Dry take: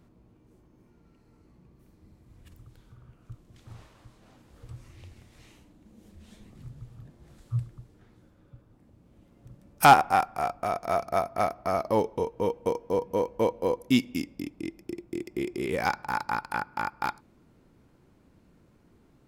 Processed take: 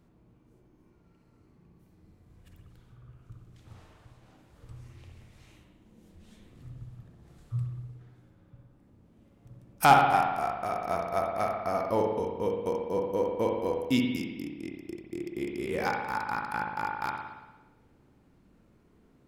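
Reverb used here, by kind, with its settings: spring tank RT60 1.1 s, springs 57 ms, chirp 60 ms, DRR 1.5 dB; gain -4 dB

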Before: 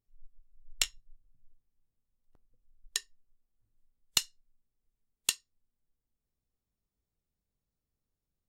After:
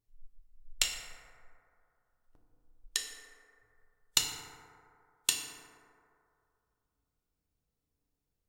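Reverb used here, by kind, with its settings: FDN reverb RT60 2.5 s, low-frequency decay 0.7×, high-frequency decay 0.3×, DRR 0.5 dB

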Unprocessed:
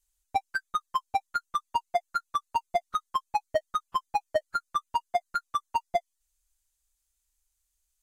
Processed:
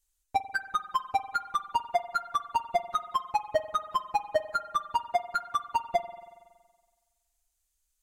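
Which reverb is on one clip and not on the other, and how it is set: spring tank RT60 1.5 s, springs 46 ms, chirp 50 ms, DRR 12 dB

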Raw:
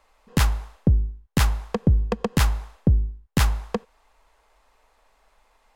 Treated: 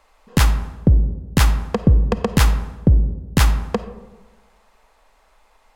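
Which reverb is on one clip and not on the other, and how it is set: digital reverb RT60 1.2 s, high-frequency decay 0.35×, pre-delay 10 ms, DRR 11 dB; gain +4.5 dB

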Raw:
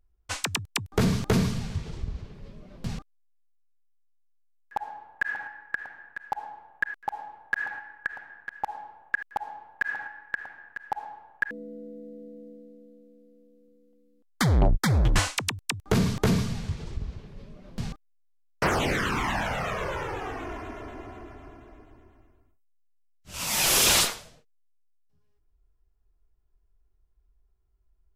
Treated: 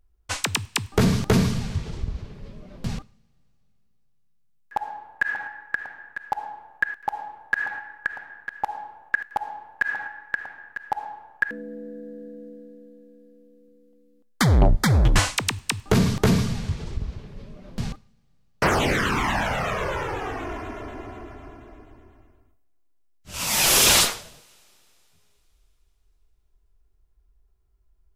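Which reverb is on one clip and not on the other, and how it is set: two-slope reverb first 0.52 s, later 3.4 s, from -19 dB, DRR 19 dB; gain +4 dB

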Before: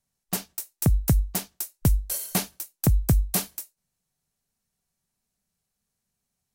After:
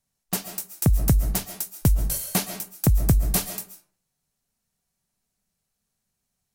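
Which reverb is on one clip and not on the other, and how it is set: digital reverb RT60 0.47 s, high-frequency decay 0.65×, pre-delay 95 ms, DRR 9 dB; gain +1.5 dB

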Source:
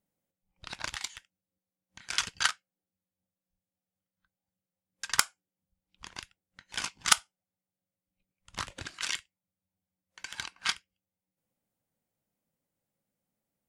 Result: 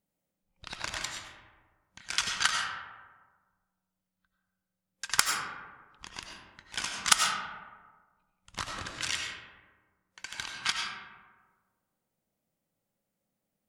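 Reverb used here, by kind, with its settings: digital reverb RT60 1.5 s, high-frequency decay 0.4×, pre-delay 55 ms, DRR 1 dB

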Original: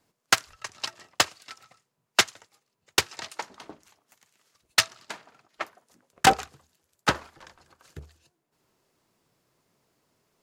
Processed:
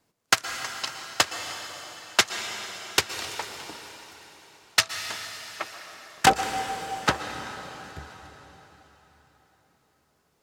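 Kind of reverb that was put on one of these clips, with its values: plate-style reverb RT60 4.3 s, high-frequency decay 0.9×, pre-delay 0.105 s, DRR 6.5 dB

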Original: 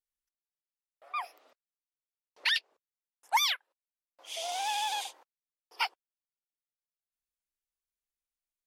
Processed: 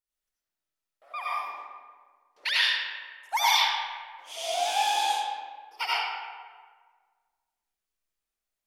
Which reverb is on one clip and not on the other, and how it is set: digital reverb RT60 1.6 s, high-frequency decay 0.6×, pre-delay 45 ms, DRR -8.5 dB; gain -2 dB

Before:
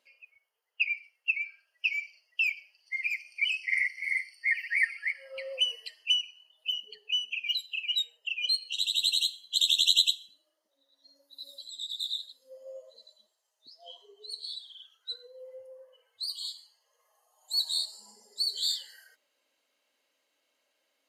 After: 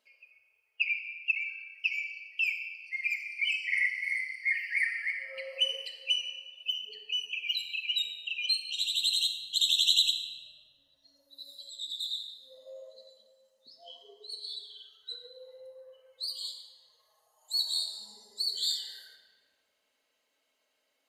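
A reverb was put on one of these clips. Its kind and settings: shoebox room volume 2300 m³, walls mixed, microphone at 1.5 m; gain -2.5 dB

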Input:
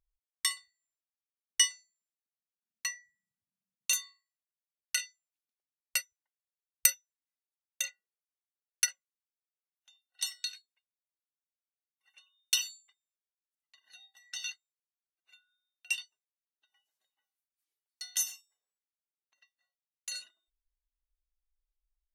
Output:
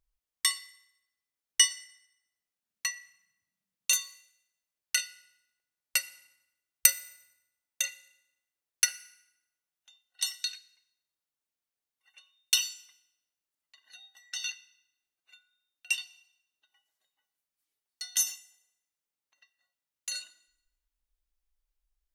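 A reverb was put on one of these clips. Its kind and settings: FDN reverb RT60 0.91 s, low-frequency decay 1.4×, high-frequency decay 0.85×, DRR 13.5 dB; gain +3.5 dB

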